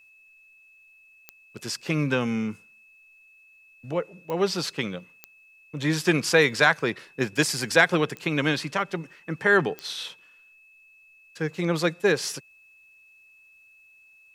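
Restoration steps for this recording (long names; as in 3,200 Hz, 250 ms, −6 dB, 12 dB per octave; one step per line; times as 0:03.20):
click removal
notch filter 2,600 Hz, Q 30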